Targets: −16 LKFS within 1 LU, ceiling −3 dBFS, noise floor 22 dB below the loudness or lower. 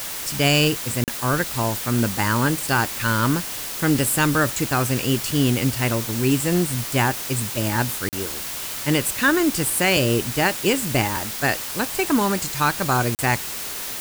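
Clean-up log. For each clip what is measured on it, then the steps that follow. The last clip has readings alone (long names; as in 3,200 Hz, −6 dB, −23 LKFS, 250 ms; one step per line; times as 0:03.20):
number of dropouts 3; longest dropout 38 ms; background noise floor −31 dBFS; target noise floor −43 dBFS; integrated loudness −21.0 LKFS; sample peak −5.5 dBFS; target loudness −16.0 LKFS
→ repair the gap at 0:01.04/0:08.09/0:13.15, 38 ms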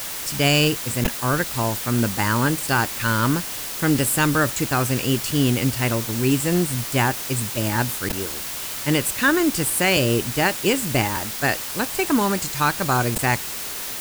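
number of dropouts 0; background noise floor −31 dBFS; target noise floor −43 dBFS
→ noise reduction from a noise print 12 dB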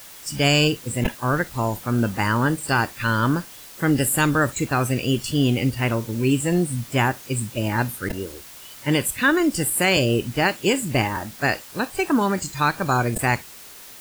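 background noise floor −42 dBFS; target noise floor −44 dBFS
→ noise reduction from a noise print 6 dB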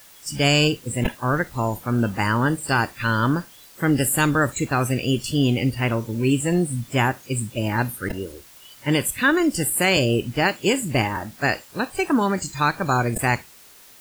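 background noise floor −48 dBFS; integrated loudness −22.0 LKFS; sample peak −6.0 dBFS; target loudness −16.0 LKFS
→ level +6 dB
brickwall limiter −3 dBFS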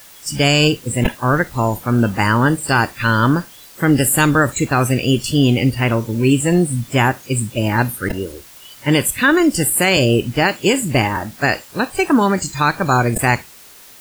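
integrated loudness −16.5 LKFS; sample peak −3.0 dBFS; background noise floor −42 dBFS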